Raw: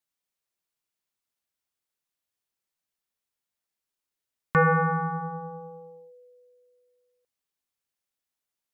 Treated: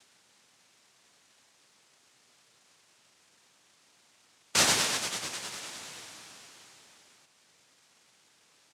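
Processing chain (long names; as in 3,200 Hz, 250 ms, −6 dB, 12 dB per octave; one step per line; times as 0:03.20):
power curve on the samples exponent 1.4
on a send at −15 dB: convolution reverb RT60 1.5 s, pre-delay 7 ms
on the sum: soft clipping −22 dBFS, distortion −12 dB
in parallel at 0 dB: upward compression, threshold −31 dBFS
on the sum: linear-phase brick-wall band-stop 790–1,800 Hz
high-shelf EQ 2,300 Hz +9.5 dB
comb filter 3.4 ms, depth 67%
cochlear-implant simulation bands 1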